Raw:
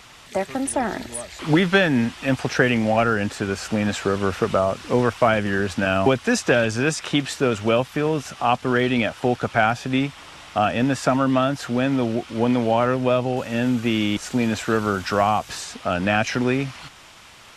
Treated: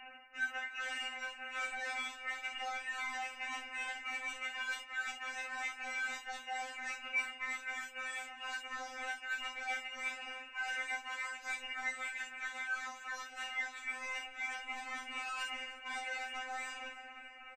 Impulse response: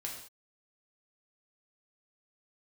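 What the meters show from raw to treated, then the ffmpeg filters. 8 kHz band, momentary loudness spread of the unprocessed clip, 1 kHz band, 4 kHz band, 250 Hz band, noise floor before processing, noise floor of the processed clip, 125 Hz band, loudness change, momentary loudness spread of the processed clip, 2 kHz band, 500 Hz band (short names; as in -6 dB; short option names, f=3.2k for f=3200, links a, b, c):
-16.5 dB, 7 LU, -19.0 dB, -13.5 dB, -40.0 dB, -46 dBFS, -53 dBFS, under -40 dB, -18.0 dB, 4 LU, -10.5 dB, -34.0 dB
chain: -filter_complex "[0:a]acrossover=split=470 2200:gain=0.224 1 0.0708[a][b][c];[a][b][c]amix=inputs=3:normalize=0,bandreject=f=700:w=21,dynaudnorm=f=210:g=11:m=4dB,alimiter=limit=-14.5dB:level=0:latency=1:release=44,areverse,acompressor=threshold=-37dB:ratio=8,areverse,aeval=exprs='abs(val(0))':c=same,lowpass=f=2.5k:t=q:w=0.5098,lowpass=f=2.5k:t=q:w=0.6013,lowpass=f=2.5k:t=q:w=0.9,lowpass=f=2.5k:t=q:w=2.563,afreqshift=-2900,asplit=2[d][e];[e]aeval=exprs='0.0422*sin(PI/2*2.24*val(0)/0.0422)':c=same,volume=-3dB[f];[d][f]amix=inputs=2:normalize=0,asplit=2[g][h];[h]adelay=13,volume=-7.5dB[i];[g][i]amix=inputs=2:normalize=0,aecho=1:1:304|608|912|1216:0.119|0.063|0.0334|0.0177[j];[1:a]atrim=start_sample=2205,atrim=end_sample=3087[k];[j][k]afir=irnorm=-1:irlink=0,afftfilt=real='re*3.46*eq(mod(b,12),0)':imag='im*3.46*eq(mod(b,12),0)':win_size=2048:overlap=0.75,volume=-1.5dB"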